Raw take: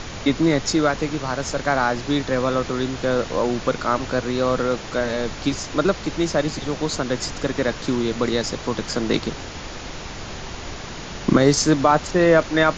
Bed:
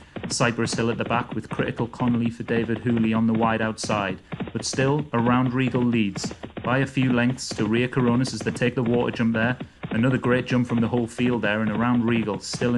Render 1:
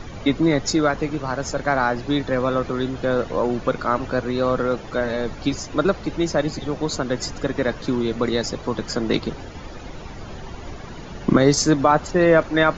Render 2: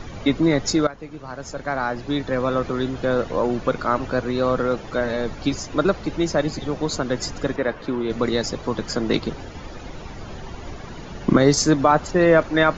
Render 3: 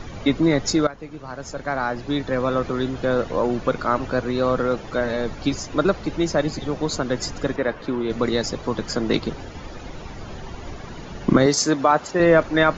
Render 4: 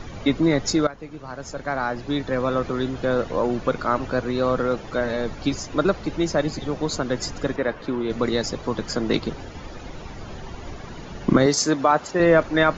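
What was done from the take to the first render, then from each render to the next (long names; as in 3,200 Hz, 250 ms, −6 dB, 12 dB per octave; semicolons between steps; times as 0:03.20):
broadband denoise 12 dB, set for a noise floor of −34 dBFS
0:00.87–0:02.65: fade in, from −15.5 dB; 0:07.56–0:08.10: bass and treble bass −7 dB, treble −14 dB
0:11.46–0:12.20: high-pass filter 320 Hz 6 dB per octave
level −1 dB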